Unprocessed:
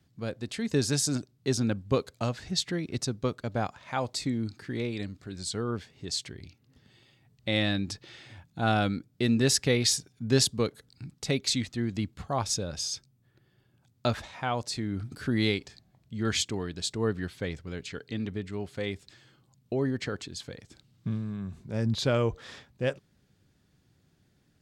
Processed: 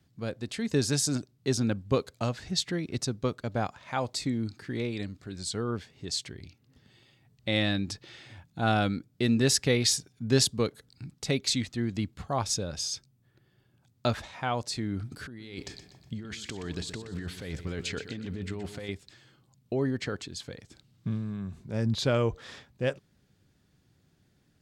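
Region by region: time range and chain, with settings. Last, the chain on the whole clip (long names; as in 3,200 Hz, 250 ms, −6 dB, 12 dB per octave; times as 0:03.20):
0:15.27–0:18.89: compressor whose output falls as the input rises −38 dBFS + repeating echo 123 ms, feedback 44%, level −11.5 dB
whole clip: no processing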